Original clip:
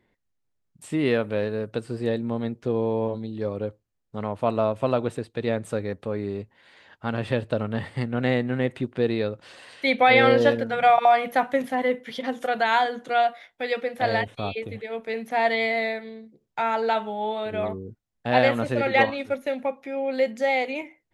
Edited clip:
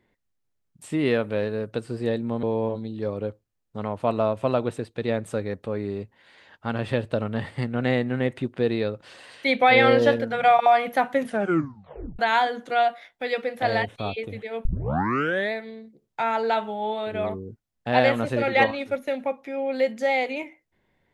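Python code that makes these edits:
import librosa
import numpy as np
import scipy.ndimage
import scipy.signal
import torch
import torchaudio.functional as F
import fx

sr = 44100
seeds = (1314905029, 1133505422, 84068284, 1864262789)

y = fx.edit(x, sr, fx.cut(start_s=2.43, length_s=0.39),
    fx.tape_stop(start_s=11.62, length_s=0.96),
    fx.tape_start(start_s=15.04, length_s=0.87), tone=tone)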